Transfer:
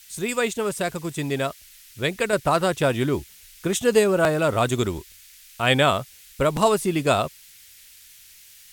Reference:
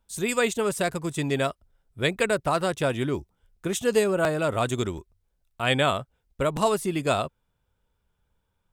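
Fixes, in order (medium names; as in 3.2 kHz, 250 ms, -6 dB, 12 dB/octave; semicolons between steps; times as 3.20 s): noise print and reduce 25 dB; trim 0 dB, from 2.33 s -4 dB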